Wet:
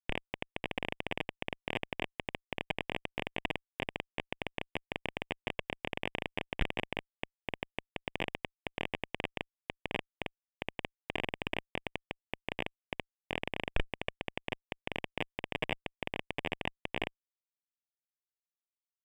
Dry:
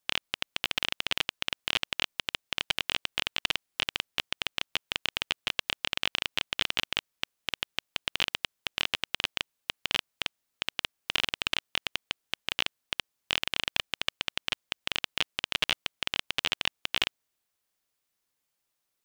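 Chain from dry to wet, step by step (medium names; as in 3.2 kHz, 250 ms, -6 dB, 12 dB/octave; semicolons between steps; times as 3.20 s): Schmitt trigger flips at -18.5 dBFS; Savitzky-Golay filter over 25 samples; bass shelf 170 Hz -4 dB; trim +12 dB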